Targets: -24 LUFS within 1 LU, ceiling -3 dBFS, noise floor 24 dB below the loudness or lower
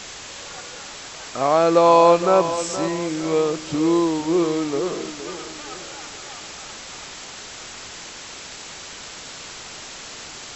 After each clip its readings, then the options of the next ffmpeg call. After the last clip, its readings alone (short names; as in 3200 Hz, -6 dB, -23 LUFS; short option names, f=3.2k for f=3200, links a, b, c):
noise floor -38 dBFS; noise floor target -44 dBFS; loudness -19.5 LUFS; peak -2.5 dBFS; loudness target -24.0 LUFS
-> -af "afftdn=nr=6:nf=-38"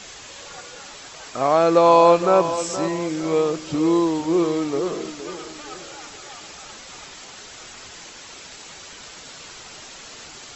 noise floor -41 dBFS; noise floor target -43 dBFS
-> -af "afftdn=nr=6:nf=-41"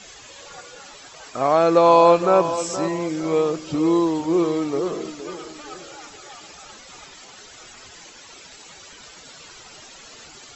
noise floor -45 dBFS; loudness -19.0 LUFS; peak -2.5 dBFS; loudness target -24.0 LUFS
-> -af "volume=-5dB"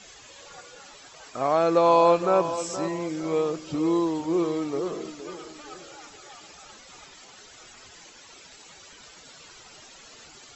loudness -24.0 LUFS; peak -7.5 dBFS; noise floor -50 dBFS